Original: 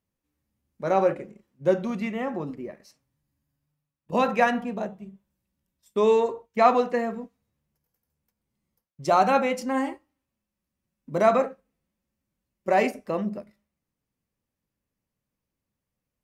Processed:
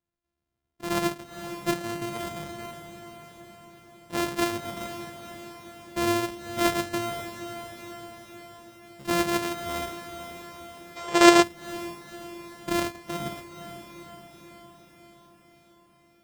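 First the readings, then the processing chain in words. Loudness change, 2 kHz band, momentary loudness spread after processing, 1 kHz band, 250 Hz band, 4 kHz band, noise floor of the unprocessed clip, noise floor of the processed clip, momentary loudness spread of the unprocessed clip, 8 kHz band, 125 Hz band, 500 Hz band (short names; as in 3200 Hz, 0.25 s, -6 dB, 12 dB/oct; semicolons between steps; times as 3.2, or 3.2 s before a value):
-2.5 dB, +2.0 dB, 18 LU, -4.0 dB, +2.0 dB, +11.0 dB, under -85 dBFS, -64 dBFS, 14 LU, +13.0 dB, 0.0 dB, -5.0 dB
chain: sample sorter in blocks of 128 samples; diffused feedback echo 0.496 s, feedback 62%, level -10 dB; spectral gain 10.96–11.43, 330–8800 Hz +11 dB; gain -5.5 dB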